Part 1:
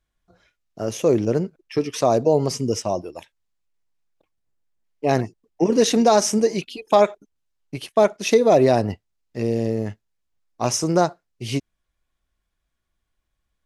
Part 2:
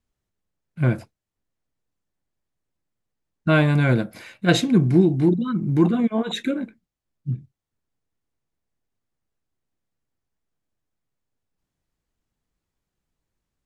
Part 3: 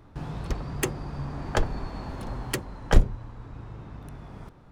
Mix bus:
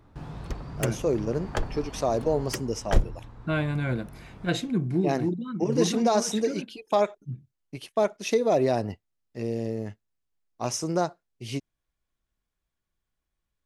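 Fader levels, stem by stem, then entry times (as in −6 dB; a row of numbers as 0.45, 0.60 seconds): −7.5, −9.5, −4.0 decibels; 0.00, 0.00, 0.00 seconds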